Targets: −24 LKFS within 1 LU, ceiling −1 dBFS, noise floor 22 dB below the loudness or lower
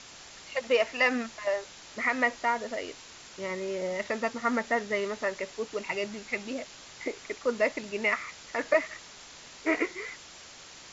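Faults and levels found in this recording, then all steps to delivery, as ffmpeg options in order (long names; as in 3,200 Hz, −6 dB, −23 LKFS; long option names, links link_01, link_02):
background noise floor −49 dBFS; target noise floor −53 dBFS; integrated loudness −30.5 LKFS; sample peak −12.0 dBFS; target loudness −24.0 LKFS
→ -af "afftdn=noise_reduction=6:noise_floor=-49"
-af "volume=6.5dB"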